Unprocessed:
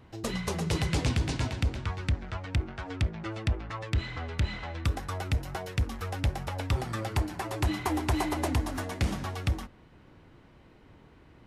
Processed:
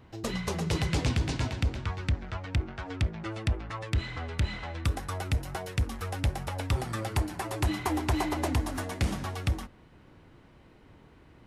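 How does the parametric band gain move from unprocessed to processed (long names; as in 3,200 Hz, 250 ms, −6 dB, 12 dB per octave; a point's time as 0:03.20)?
parametric band 9,800 Hz 0.65 octaves
0:02.83 −2.5 dB
0:03.34 +5 dB
0:07.48 +5 dB
0:08.34 −3.5 dB
0:08.67 +3 dB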